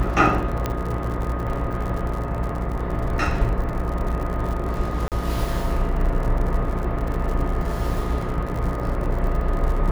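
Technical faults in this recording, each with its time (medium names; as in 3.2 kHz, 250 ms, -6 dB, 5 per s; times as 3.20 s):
buzz 60 Hz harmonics 23 -27 dBFS
crackle 85 per s -29 dBFS
0.66 s: pop -10 dBFS
5.08–5.12 s: dropout 38 ms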